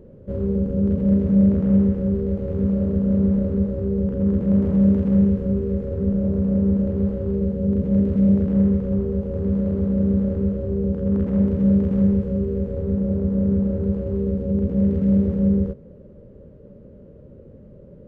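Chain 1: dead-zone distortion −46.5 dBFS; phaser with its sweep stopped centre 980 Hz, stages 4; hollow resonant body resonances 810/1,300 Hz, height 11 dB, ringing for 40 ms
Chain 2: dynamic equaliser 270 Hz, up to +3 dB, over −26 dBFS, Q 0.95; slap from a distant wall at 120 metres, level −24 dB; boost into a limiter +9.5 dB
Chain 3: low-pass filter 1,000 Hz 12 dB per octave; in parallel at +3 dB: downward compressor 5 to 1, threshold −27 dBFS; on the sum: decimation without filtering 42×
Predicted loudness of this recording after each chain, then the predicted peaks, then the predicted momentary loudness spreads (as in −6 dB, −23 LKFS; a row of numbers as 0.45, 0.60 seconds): −24.0, −10.5, −17.0 LKFS; −10.5, −1.0, −5.0 dBFS; 7, 5, 5 LU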